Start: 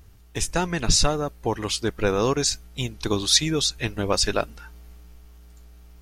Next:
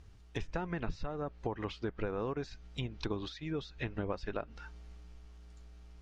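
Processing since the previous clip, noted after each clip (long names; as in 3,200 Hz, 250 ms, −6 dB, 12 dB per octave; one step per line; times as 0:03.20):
downward compressor 12 to 1, threshold −26 dBFS, peak gain reduction 14 dB
low-pass filter 6,200 Hz 12 dB per octave
treble cut that deepens with the level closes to 1,900 Hz, closed at −27 dBFS
level −5.5 dB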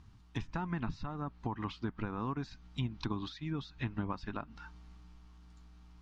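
octave-band graphic EQ 125/250/500/1,000/4,000 Hz +7/+10/−11/+11/+4 dB
level −5 dB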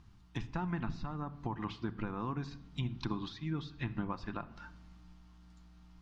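rectangular room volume 2,800 cubic metres, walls furnished, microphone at 0.83 metres
level −1 dB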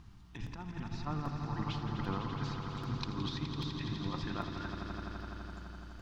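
compressor whose output falls as the input rises −40 dBFS, ratio −0.5
echo that builds up and dies away 84 ms, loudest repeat 5, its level −9.5 dB
regular buffer underruns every 0.79 s, samples 256, repeat, from 0:00.46
level +1 dB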